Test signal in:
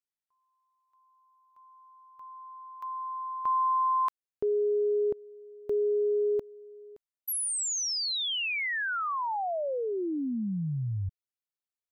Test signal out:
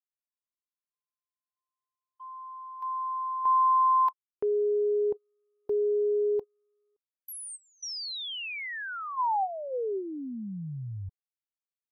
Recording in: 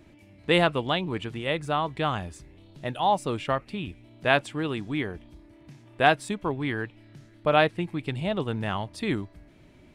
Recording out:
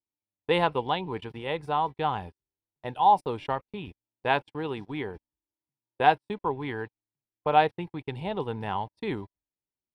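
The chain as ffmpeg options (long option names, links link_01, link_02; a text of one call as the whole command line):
ffmpeg -i in.wav -af "superequalizer=7b=2:9b=3.16:15b=0.316:16b=0.631,agate=range=-43dB:threshold=-40dB:ratio=16:release=57:detection=peak,volume=-5.5dB" out.wav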